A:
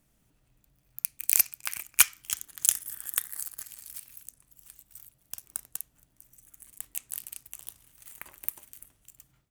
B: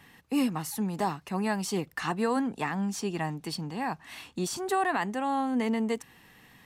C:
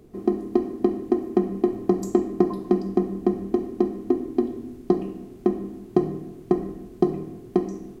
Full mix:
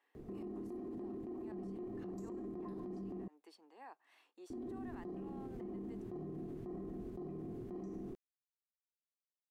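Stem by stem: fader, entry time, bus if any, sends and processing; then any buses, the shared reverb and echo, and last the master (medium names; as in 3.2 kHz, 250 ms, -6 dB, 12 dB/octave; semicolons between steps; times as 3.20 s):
mute
-19.5 dB, 0.00 s, bus A, no send, steep high-pass 330 Hz 36 dB/octave
-2.5 dB, 0.15 s, muted 3.28–4.50 s, bus A, no send, compressor with a negative ratio -21 dBFS
bus A: 0.0 dB, treble shelf 2.6 kHz -11.5 dB; compression, threshold -29 dBFS, peak gain reduction 8.5 dB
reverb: none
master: peak limiter -38.5 dBFS, peak gain reduction 18.5 dB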